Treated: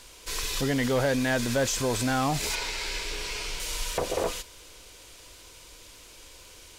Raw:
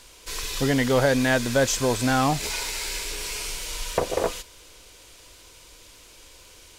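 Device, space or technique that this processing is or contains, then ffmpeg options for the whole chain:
clipper into limiter: -filter_complex "[0:a]asoftclip=type=hard:threshold=0.188,alimiter=limit=0.112:level=0:latency=1:release=21,asettb=1/sr,asplit=3[s0][s1][s2];[s0]atrim=end=2.554[s3];[s1]atrim=start=2.55:end=3.6,asetpts=PTS-STARTPTS,afade=t=in:d=0.004:c=qsin,afade=t=out:st=1.046:d=0.004:c=qsin,acrossover=split=5800[s4][s5];[s5]acompressor=threshold=0.00447:ratio=4:attack=1:release=60[s6];[s4][s6]amix=inputs=2:normalize=0[s7];[s2]atrim=start=3.596[s8];[s3][s7]acrossfade=d=0.004:c1=hsin:c2=qsin[s9];[s9][s8]acrossfade=d=0.004:c1=qsin:c2=hsin"

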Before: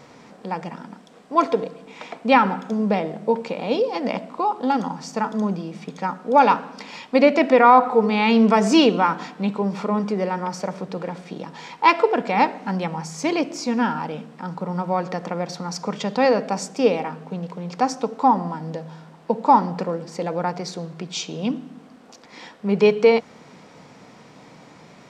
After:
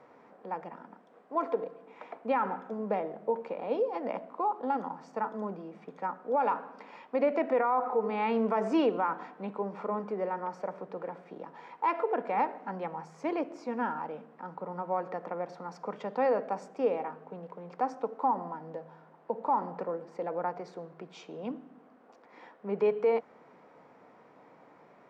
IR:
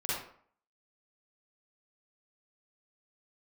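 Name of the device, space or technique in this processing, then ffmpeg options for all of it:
DJ mixer with the lows and highs turned down: -filter_complex "[0:a]acrossover=split=330 2000:gain=0.141 1 0.1[s0][s1][s2];[s0][s1][s2]amix=inputs=3:normalize=0,alimiter=limit=0.251:level=0:latency=1:release=73,lowshelf=f=330:g=5,volume=0.398"

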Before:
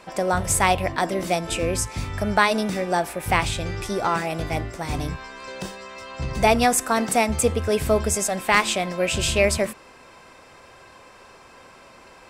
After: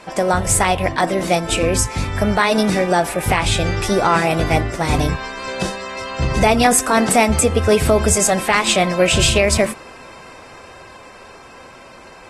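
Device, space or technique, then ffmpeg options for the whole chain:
low-bitrate web radio: -af "dynaudnorm=f=440:g=11:m=4.73,alimiter=limit=0.316:level=0:latency=1:release=134,volume=1.88" -ar 44100 -c:a aac -b:a 32k

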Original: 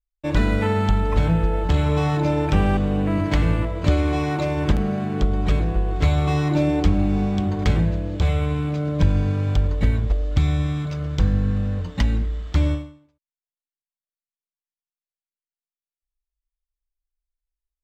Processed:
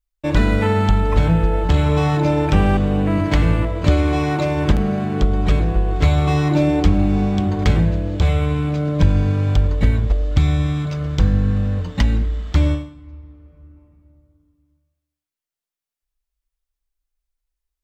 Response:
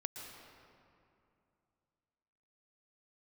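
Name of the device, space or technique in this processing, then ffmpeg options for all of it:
ducked reverb: -filter_complex "[0:a]asplit=3[s0][s1][s2];[1:a]atrim=start_sample=2205[s3];[s1][s3]afir=irnorm=-1:irlink=0[s4];[s2]apad=whole_len=786667[s5];[s4][s5]sidechaincompress=threshold=0.02:ratio=4:attack=31:release=915,volume=0.501[s6];[s0][s6]amix=inputs=2:normalize=0,volume=1.41"

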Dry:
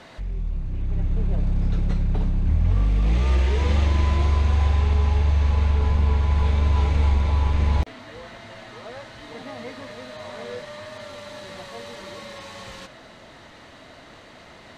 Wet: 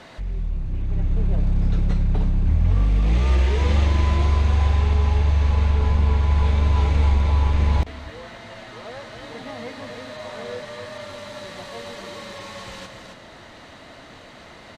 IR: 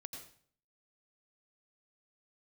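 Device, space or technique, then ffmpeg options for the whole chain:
ducked delay: -filter_complex "[0:a]asplit=3[s0][s1][s2];[s1]adelay=269,volume=0.473[s3];[s2]apad=whole_len=663311[s4];[s3][s4]sidechaincompress=threshold=0.0282:ratio=8:attack=16:release=1060[s5];[s0][s5]amix=inputs=2:normalize=0,volume=1.19"

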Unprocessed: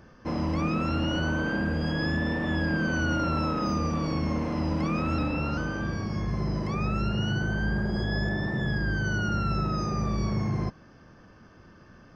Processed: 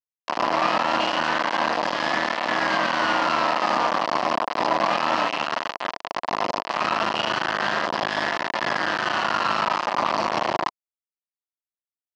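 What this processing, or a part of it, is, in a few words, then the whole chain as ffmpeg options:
hand-held game console: -af "acrusher=bits=3:mix=0:aa=0.000001,highpass=420,equalizer=f=430:t=q:w=4:g=-8,equalizer=f=680:t=q:w=4:g=5,equalizer=f=990:t=q:w=4:g=6,equalizer=f=1500:t=q:w=4:g=-5,equalizer=f=2300:t=q:w=4:g=-6,equalizer=f=3600:t=q:w=4:g=-8,lowpass=f=4200:w=0.5412,lowpass=f=4200:w=1.3066,volume=2.24"

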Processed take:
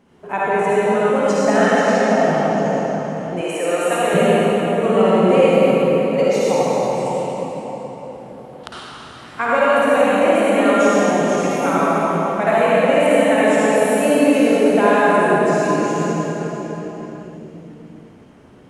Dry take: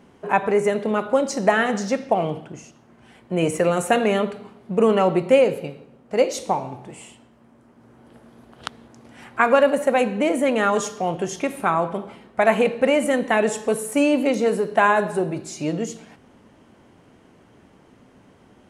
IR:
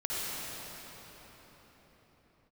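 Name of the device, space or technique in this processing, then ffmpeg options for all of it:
cathedral: -filter_complex "[1:a]atrim=start_sample=2205[s0];[0:a][s0]afir=irnorm=-1:irlink=0,asettb=1/sr,asplit=3[s1][s2][s3];[s1]atrim=end=3.414[s4];[s2]atrim=start=3.41:end=4.14,asetpts=PTS-STARTPTS,afade=t=in:d=0.004:c=qsin,afade=t=out:st=0.726:d=0.004:c=qsin,highpass=420[s5];[s3]atrim=start=4.136[s6];[s4][s5]acrossfade=d=0.004:c1=hsin:c2=qsin[s7];[s7][s6]acrossfade=d=0.004:c1=qsin:c2=hsin,volume=0.75"

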